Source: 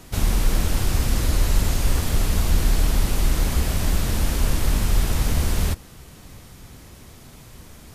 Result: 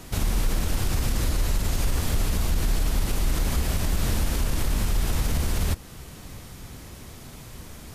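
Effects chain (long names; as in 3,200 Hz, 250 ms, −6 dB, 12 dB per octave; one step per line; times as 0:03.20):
in parallel at −3 dB: downward compressor, threshold −29 dBFS, peak gain reduction 16.5 dB
on the sum: brickwall limiter −12.5 dBFS, peak gain reduction 7 dB
level −2.5 dB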